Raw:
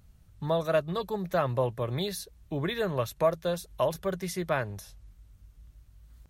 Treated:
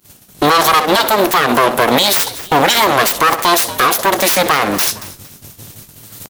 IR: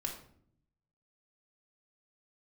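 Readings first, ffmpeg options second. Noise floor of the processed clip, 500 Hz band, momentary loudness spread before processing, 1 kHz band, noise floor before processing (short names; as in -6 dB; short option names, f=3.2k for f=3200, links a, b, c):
-44 dBFS, +12.5 dB, 8 LU, +23.0 dB, -59 dBFS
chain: -filter_complex "[0:a]equalizer=f=1.5k:t=o:w=1.6:g=-5,agate=range=-33dB:threshold=-47dB:ratio=3:detection=peak,asplit=2[a][b];[b]adelay=64,lowpass=f=3.6k:p=1,volume=-16dB,asplit=2[c][d];[d]adelay=64,lowpass=f=3.6k:p=1,volume=0.31,asplit=2[e][f];[f]adelay=64,lowpass=f=3.6k:p=1,volume=0.31[g];[c][e][g]amix=inputs=3:normalize=0[h];[a][h]amix=inputs=2:normalize=0,acontrast=75,highshelf=f=8.1k:g=8.5,aeval=exprs='abs(val(0))':c=same,highpass=f=840:p=1,acompressor=threshold=-35dB:ratio=6,asplit=2[i][j];[j]asplit=2[k][l];[k]adelay=230,afreqshift=-87,volume=-21dB[m];[l]adelay=460,afreqshift=-174,volume=-31.2dB[n];[m][n]amix=inputs=2:normalize=0[o];[i][o]amix=inputs=2:normalize=0,alimiter=level_in=33dB:limit=-1dB:release=50:level=0:latency=1,volume=-1dB"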